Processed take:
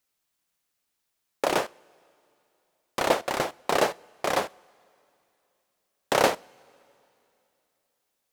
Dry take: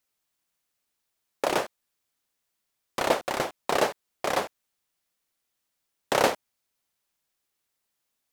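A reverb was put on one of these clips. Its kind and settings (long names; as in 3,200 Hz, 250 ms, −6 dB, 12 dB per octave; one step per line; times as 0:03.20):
coupled-rooms reverb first 0.4 s, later 3 s, from −16 dB, DRR 20 dB
level +1 dB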